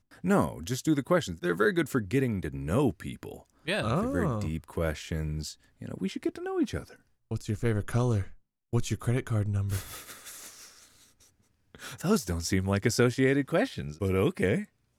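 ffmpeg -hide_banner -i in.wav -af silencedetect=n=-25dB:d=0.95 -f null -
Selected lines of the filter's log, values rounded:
silence_start: 9.77
silence_end: 12.05 | silence_duration: 2.27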